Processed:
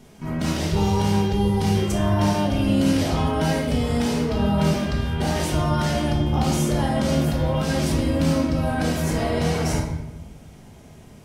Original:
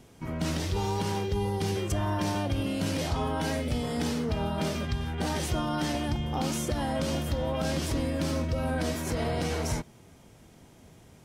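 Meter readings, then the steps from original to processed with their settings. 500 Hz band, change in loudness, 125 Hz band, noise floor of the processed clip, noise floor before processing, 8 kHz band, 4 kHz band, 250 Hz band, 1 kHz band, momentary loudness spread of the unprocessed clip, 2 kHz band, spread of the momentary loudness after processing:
+7.0 dB, +8.0 dB, +9.0 dB, -45 dBFS, -54 dBFS, +5.0 dB, +5.5 dB, +9.5 dB, +6.5 dB, 2 LU, +6.0 dB, 4 LU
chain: simulated room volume 330 m³, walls mixed, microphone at 1.4 m; trim +2.5 dB

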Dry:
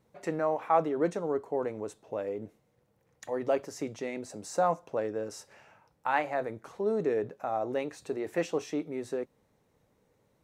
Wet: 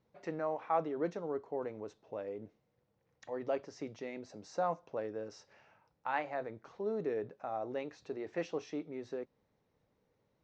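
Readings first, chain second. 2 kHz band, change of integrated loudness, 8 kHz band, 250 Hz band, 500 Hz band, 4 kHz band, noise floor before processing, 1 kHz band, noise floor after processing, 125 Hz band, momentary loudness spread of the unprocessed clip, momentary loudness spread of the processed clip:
-7.0 dB, -7.0 dB, -13.5 dB, -7.0 dB, -7.0 dB, -7.5 dB, -72 dBFS, -7.0 dB, -79 dBFS, -7.0 dB, 11 LU, 11 LU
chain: steep low-pass 5.9 kHz 36 dB/octave; trim -7 dB

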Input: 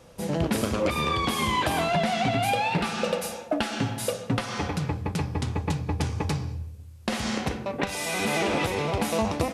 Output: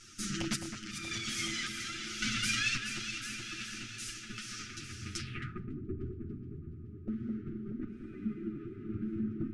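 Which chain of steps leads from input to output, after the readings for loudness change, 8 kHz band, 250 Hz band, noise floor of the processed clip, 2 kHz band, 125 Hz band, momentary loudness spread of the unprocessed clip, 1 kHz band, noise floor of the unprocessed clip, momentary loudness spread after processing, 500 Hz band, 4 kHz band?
-10.0 dB, -4.0 dB, -9.5 dB, -48 dBFS, -7.5 dB, -13.5 dB, 6 LU, -22.0 dB, -42 dBFS, 11 LU, -21.0 dB, -5.5 dB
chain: comb filter that takes the minimum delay 8.8 ms; random-step tremolo 1.8 Hz, depth 85%; FFT band-reject 420–1200 Hz; in parallel at -1 dB: compression 6:1, threshold -41 dBFS, peak gain reduction 17 dB; on the sum: wavefolder -18.5 dBFS; fifteen-band graphic EQ 400 Hz -8 dB, 1.6 kHz -3 dB, 4 kHz -3 dB, 10 kHz +7 dB; echo that smears into a reverb 972 ms, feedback 45%, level -14.5 dB; flange 0.5 Hz, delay 2.1 ms, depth 8.2 ms, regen +35%; on a send: echo whose repeats swap between lows and highs 212 ms, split 2.3 kHz, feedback 78%, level -6.5 dB; on the sum: spectral replace 1.99–2.89 s, 320–990 Hz both; low-pass sweep 6 kHz -> 450 Hz, 5.18–5.74 s; bass shelf 310 Hz -8 dB; trim +1.5 dB

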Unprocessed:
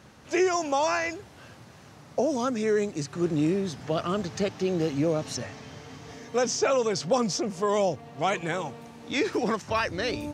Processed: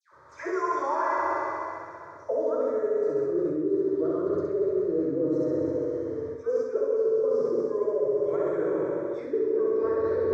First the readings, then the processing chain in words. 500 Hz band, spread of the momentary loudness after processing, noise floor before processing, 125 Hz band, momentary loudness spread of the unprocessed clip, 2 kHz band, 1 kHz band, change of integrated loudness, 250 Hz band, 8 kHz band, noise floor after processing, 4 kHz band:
+3.0 dB, 7 LU, -51 dBFS, -8.5 dB, 11 LU, no reading, -1.5 dB, +0.5 dB, -1.5 dB, under -20 dB, -45 dBFS, under -20 dB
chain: tone controls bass +8 dB, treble -2 dB; band-pass sweep 910 Hz -> 420 Hz, 1.13–3.50 s; static phaser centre 760 Hz, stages 6; phase dispersion lows, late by 128 ms, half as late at 1.5 kHz; on a send: flutter echo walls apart 11.2 m, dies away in 1.4 s; on the sum: plate-style reverb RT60 2.5 s, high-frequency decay 1×, DRR 0 dB; reverse; compression 6:1, threshold -31 dBFS, peak gain reduction 15 dB; reverse; trim +8 dB

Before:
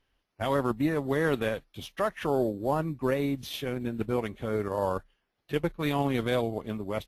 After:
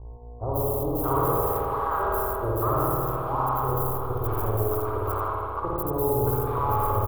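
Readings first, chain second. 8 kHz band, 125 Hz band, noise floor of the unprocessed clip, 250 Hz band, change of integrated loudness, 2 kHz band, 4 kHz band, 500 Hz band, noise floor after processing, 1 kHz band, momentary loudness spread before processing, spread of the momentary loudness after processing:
+7.5 dB, +6.5 dB, -78 dBFS, -3.0 dB, +4.0 dB, -5.0 dB, under -15 dB, +2.0 dB, -39 dBFS, +9.5 dB, 7 LU, 5 LU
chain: spectral levelling over time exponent 0.6; trance gate ".xxxxx..x.xxxx.." 149 bpm; on a send: feedback delay 85 ms, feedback 32%, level -4.5 dB; on the sum: bit crusher 5-bit; gate -28 dBFS, range -10 dB; mains buzz 60 Hz, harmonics 18, -45 dBFS -4 dB/octave; FFT filter 110 Hz 0 dB, 200 Hz -26 dB, 420 Hz -8 dB, 590 Hz -12 dB, 860 Hz -4 dB, 1.2 kHz -1 dB, 1.8 kHz -30 dB, 5.9 kHz -29 dB, 14 kHz +4 dB; three bands offset in time lows, highs, mids 140/620 ms, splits 720/4200 Hz; spring tank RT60 2.5 s, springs 54 ms, chirp 40 ms, DRR -5 dB; in parallel at -2.5 dB: compression, threshold -32 dBFS, peak gain reduction 8 dB; on the sum: modulated delay 149 ms, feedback 74%, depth 76 cents, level -17.5 dB; trim +2.5 dB

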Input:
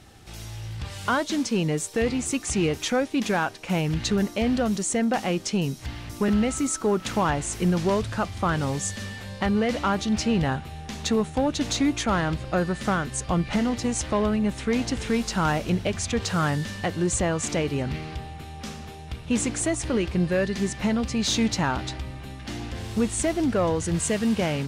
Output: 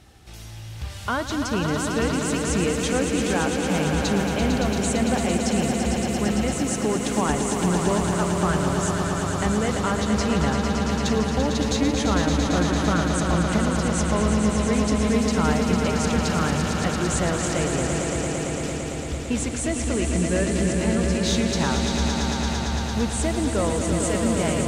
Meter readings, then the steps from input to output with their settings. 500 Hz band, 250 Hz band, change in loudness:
+2.5 dB, +2.5 dB, +2.5 dB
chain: peaking EQ 66 Hz +9.5 dB 0.28 oct; on a send: echo with a slow build-up 113 ms, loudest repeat 5, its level -7 dB; on the sum: trim -2 dB

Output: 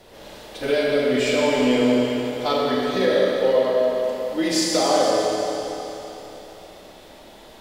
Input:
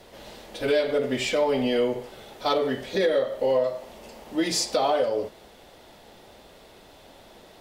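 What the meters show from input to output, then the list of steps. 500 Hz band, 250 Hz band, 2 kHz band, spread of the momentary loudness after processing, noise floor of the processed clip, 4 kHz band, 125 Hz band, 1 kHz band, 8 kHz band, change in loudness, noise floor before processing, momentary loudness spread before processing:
+4.5 dB, +7.5 dB, +5.5 dB, 15 LU, -45 dBFS, +5.0 dB, +5.0 dB, +4.5 dB, +5.0 dB, +4.5 dB, -51 dBFS, 17 LU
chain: Schroeder reverb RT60 3.5 s, combs from 28 ms, DRR -3.5 dB

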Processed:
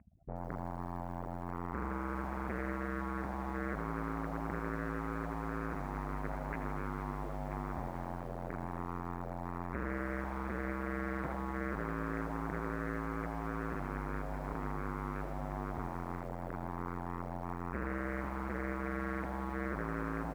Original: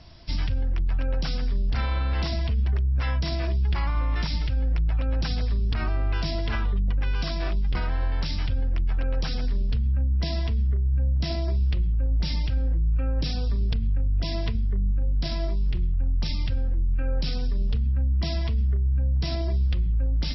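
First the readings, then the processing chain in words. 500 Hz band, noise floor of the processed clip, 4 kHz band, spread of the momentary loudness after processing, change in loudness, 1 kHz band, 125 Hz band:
-3.5 dB, -42 dBFS, -28.5 dB, 4 LU, -13.0 dB, +1.0 dB, -17.0 dB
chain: spectral contrast enhancement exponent 3.4; hard clipper -32.5 dBFS, distortion -8 dB; on a send: feedback delay 987 ms, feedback 32%, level -12 dB; on the sum: Chebyshev shaper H 2 -42 dB, 5 -43 dB, 7 -17 dB, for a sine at -29.5 dBFS; steep low-pass 2.4 kHz 72 dB/octave; in parallel at +2 dB: compression 6:1, threshold -45 dBFS, peak gain reduction 12.5 dB; on the sum: high-pass 1 kHz 6 dB/octave; bit-crushed delay 80 ms, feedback 80%, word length 11-bit, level -11.5 dB; trim +12 dB

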